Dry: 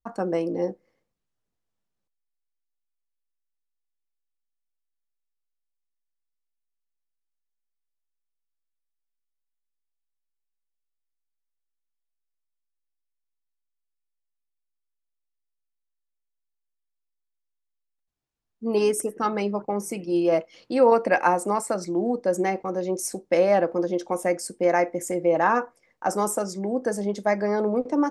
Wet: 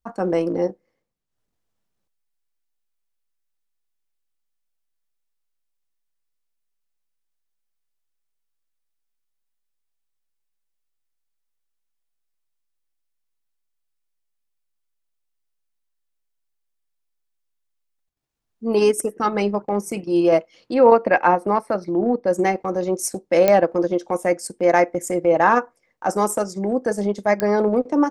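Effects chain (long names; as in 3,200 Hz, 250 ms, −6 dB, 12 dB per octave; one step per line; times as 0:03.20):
transient designer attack −4 dB, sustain −8 dB
0:20.74–0:22.27: moving average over 6 samples
digital clicks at 0:23.48/0:27.40, −10 dBFS
level +6 dB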